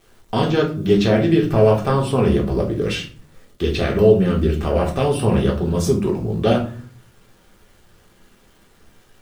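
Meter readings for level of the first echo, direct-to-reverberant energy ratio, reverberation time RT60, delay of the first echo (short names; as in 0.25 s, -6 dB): none, -1.5 dB, 0.45 s, none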